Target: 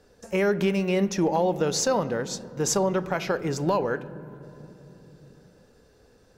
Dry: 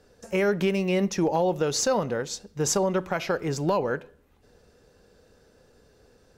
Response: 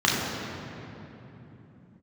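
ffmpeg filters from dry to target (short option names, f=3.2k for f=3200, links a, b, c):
-filter_complex "[0:a]asplit=2[a][b];[1:a]atrim=start_sample=2205,lowpass=3.7k[c];[b][c]afir=irnorm=-1:irlink=0,volume=-32.5dB[d];[a][d]amix=inputs=2:normalize=0"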